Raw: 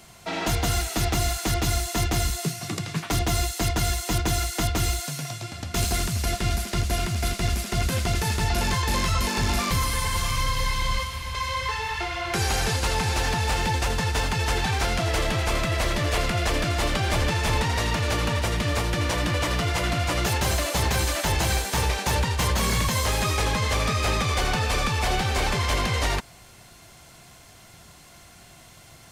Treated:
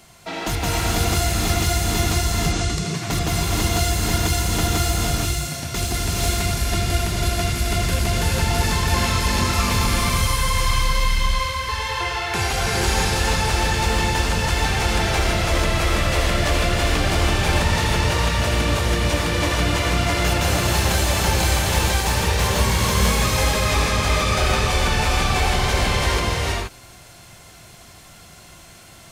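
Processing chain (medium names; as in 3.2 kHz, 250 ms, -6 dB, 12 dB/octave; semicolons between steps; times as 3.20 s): 2.10–2.70 s: low-pass 7.9 kHz 24 dB/octave; gated-style reverb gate 500 ms rising, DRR -3 dB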